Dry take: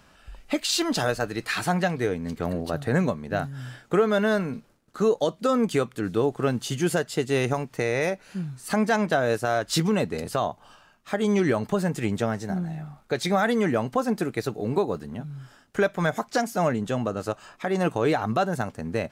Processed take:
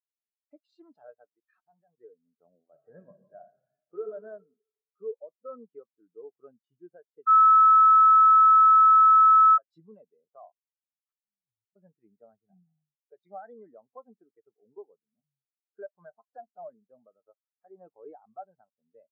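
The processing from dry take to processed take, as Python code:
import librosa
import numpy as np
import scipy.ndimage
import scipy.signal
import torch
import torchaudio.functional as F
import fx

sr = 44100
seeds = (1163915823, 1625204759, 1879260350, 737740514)

y = fx.level_steps(x, sr, step_db=15, at=(1.27, 1.98))
y = fx.reverb_throw(y, sr, start_s=2.68, length_s=1.37, rt60_s=1.9, drr_db=2.5)
y = fx.cheby2_bandstop(y, sr, low_hz=600.0, high_hz=6100.0, order=4, stop_db=80, at=(11.12, 11.76))
y = fx.peak_eq(y, sr, hz=120.0, db=5.5, octaves=0.57, at=(12.32, 13.01))
y = fx.edit(y, sr, fx.bleep(start_s=7.27, length_s=2.31, hz=1300.0, db=-13.5), tone=tone)
y = fx.highpass(y, sr, hz=150.0, slope=6)
y = fx.peak_eq(y, sr, hz=950.0, db=8.5, octaves=2.5)
y = fx.spectral_expand(y, sr, expansion=2.5)
y = F.gain(torch.from_numpy(y), -9.0).numpy()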